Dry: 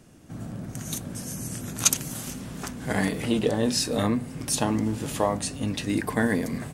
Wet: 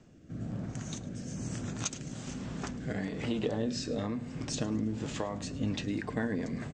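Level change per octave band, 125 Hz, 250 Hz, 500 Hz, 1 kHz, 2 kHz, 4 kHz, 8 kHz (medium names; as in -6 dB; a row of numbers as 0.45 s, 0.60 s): -5.0 dB, -7.0 dB, -8.5 dB, -11.5 dB, -10.0 dB, -10.5 dB, -14.0 dB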